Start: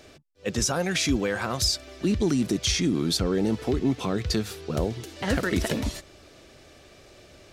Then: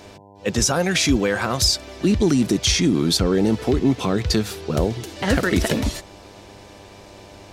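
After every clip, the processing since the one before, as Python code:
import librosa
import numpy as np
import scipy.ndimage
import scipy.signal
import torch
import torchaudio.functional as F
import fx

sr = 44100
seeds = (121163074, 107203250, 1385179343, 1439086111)

y = fx.dmg_buzz(x, sr, base_hz=100.0, harmonics=10, level_db=-53.0, tilt_db=-1, odd_only=False)
y = y * 10.0 ** (6.0 / 20.0)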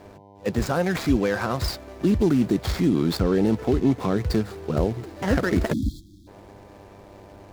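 y = scipy.ndimage.median_filter(x, 15, mode='constant')
y = fx.spec_erase(y, sr, start_s=5.73, length_s=0.54, low_hz=360.0, high_hz=3200.0)
y = y * 10.0 ** (-2.0 / 20.0)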